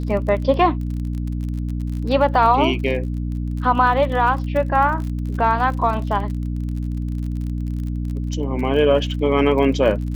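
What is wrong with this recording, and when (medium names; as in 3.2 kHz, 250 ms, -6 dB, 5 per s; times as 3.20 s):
crackle 40 per s -28 dBFS
hum 60 Hz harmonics 5 -24 dBFS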